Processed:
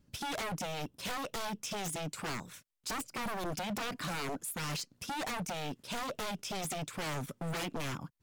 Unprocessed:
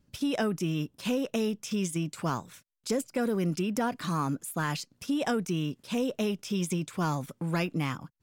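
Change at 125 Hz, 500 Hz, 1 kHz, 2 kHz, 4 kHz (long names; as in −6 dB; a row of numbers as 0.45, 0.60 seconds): −9.5, −9.0, −3.0, −2.0, −0.5 decibels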